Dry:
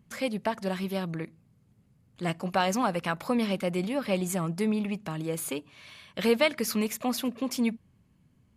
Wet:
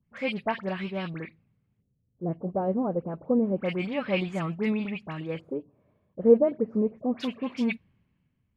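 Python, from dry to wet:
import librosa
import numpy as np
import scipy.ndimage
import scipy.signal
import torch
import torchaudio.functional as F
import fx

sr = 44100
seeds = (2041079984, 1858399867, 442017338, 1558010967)

y = fx.filter_lfo_lowpass(x, sr, shape='square', hz=0.28, low_hz=480.0, high_hz=2500.0, q=1.6)
y = fx.dispersion(y, sr, late='highs', ms=63.0, hz=2100.0)
y = fx.band_widen(y, sr, depth_pct=40)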